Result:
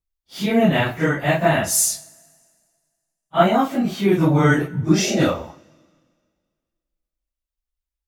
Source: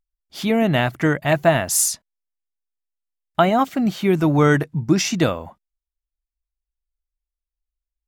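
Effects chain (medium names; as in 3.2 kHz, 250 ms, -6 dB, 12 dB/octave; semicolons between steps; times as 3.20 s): phase randomisation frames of 100 ms; two-slope reverb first 0.46 s, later 1.9 s, from -18 dB, DRR 11.5 dB; spectral replace 4.98–5.19 s, 360–800 Hz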